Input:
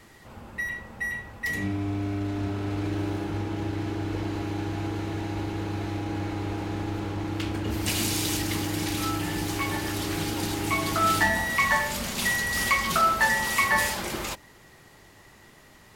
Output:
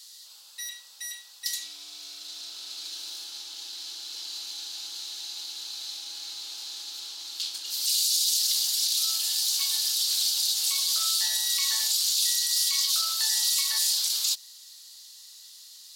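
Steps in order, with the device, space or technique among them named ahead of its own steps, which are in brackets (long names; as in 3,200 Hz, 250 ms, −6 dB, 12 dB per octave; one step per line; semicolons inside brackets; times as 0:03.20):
over-bright horn tweeter (high shelf with overshoot 3,000 Hz +12 dB, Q 3; brickwall limiter −12.5 dBFS, peak gain reduction 10.5 dB)
Bessel high-pass filter 2,900 Hz, order 2
level −1.5 dB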